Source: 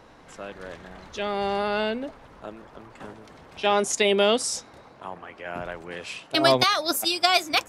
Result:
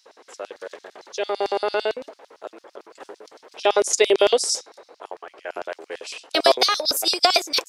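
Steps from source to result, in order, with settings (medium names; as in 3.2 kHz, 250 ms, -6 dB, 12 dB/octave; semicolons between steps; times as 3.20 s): LFO high-pass square 8.9 Hz 420–5000 Hz; tone controls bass -10 dB, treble 0 dB; trim +1.5 dB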